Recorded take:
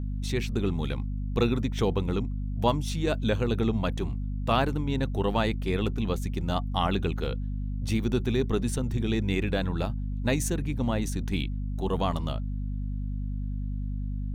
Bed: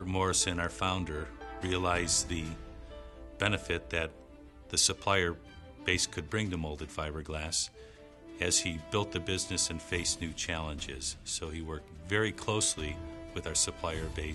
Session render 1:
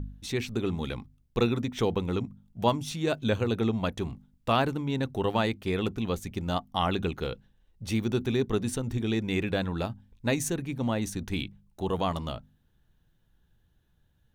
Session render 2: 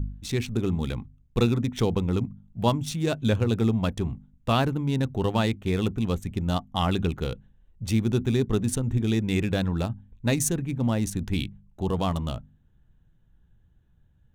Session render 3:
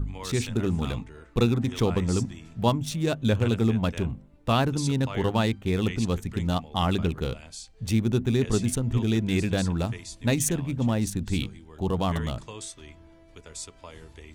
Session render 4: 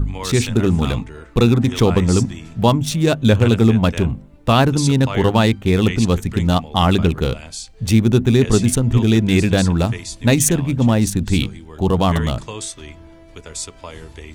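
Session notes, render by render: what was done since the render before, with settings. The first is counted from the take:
hum removal 50 Hz, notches 5
adaptive Wiener filter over 9 samples; bass and treble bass +7 dB, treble +8 dB
mix in bed −9.5 dB
level +10 dB; brickwall limiter −1 dBFS, peak gain reduction 3 dB

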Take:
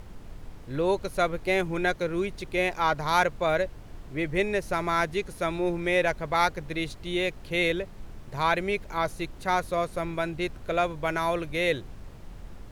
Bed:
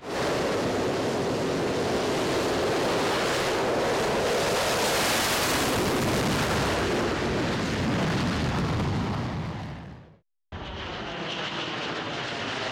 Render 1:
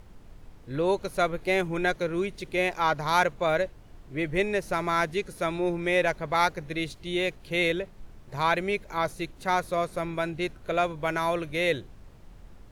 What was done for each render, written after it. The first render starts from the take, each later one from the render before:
noise reduction from a noise print 6 dB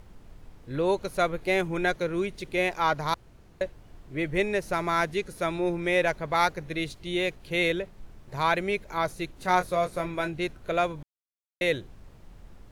0:03.14–0:03.61: fill with room tone
0:09.36–0:10.28: double-tracking delay 22 ms −7 dB
0:11.03–0:11.61: silence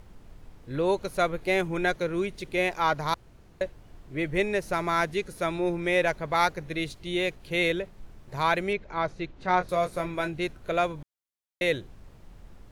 0:08.73–0:09.69: high-frequency loss of the air 160 metres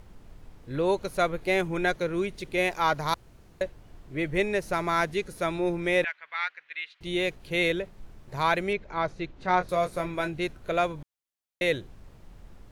0:02.58–0:03.63: high-shelf EQ 6,000 Hz +4.5 dB
0:06.04–0:07.01: flat-topped band-pass 2,200 Hz, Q 1.3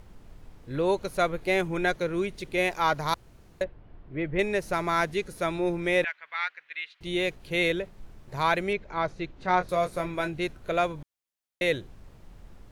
0:03.64–0:04.39: high-frequency loss of the air 370 metres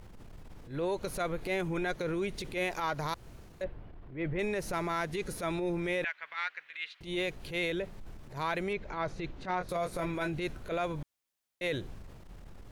transient designer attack −11 dB, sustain +4 dB
downward compressor, threshold −29 dBFS, peak gain reduction 9 dB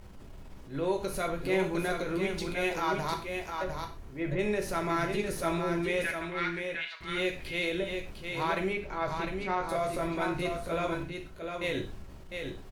single-tap delay 704 ms −5.5 dB
reverb whose tail is shaped and stops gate 150 ms falling, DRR 2.5 dB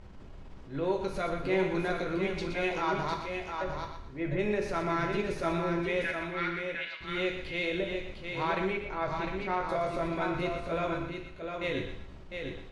high-frequency loss of the air 98 metres
feedback echo with a high-pass in the loop 120 ms, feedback 32%, level −7.5 dB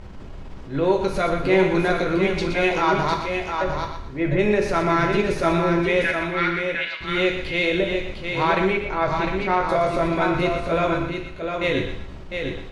level +10.5 dB

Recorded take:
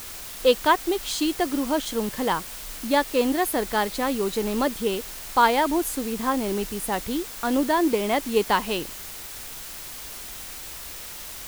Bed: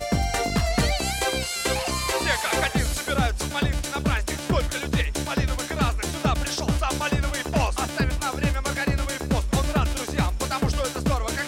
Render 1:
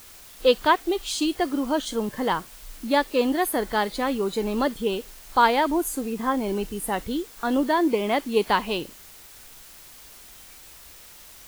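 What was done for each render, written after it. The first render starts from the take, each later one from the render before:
noise reduction from a noise print 9 dB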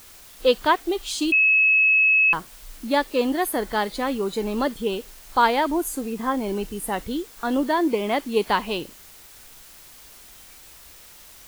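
0:01.32–0:02.33: beep over 2,580 Hz −14 dBFS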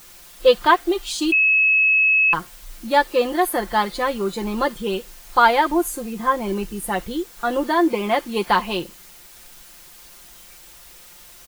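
dynamic equaliser 1,200 Hz, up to +4 dB, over −33 dBFS, Q 0.78
comb filter 5.7 ms, depth 68%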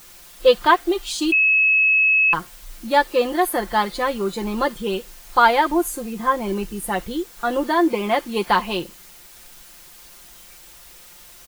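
no processing that can be heard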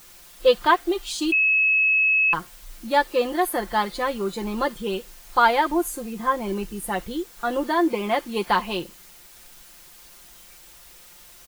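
level −3 dB

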